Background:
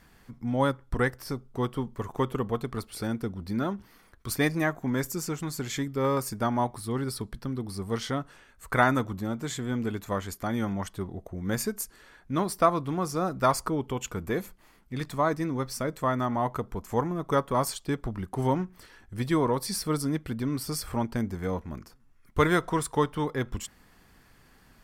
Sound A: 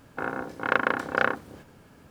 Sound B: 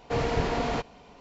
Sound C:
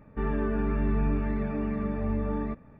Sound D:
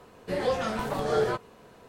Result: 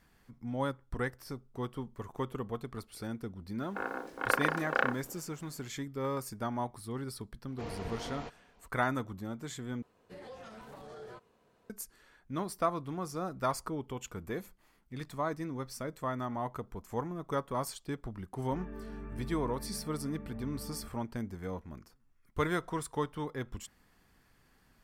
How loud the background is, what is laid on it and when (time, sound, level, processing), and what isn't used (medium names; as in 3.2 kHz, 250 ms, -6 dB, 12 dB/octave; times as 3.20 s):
background -8.5 dB
3.58 s: add A -5.5 dB + high-pass 270 Hz
7.48 s: add B -14.5 dB
9.82 s: replace with D -16 dB + peak limiter -24 dBFS
18.34 s: add C -16 dB